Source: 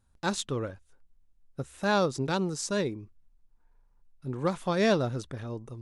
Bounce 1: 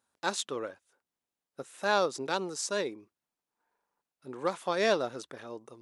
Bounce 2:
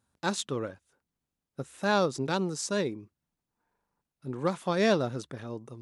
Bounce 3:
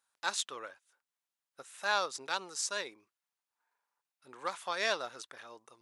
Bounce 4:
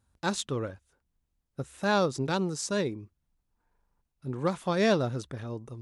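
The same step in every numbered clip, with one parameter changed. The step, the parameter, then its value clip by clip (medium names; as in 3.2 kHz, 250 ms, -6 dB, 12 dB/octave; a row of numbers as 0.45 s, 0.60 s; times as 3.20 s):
high-pass, cutoff frequency: 390 Hz, 140 Hz, 1 kHz, 47 Hz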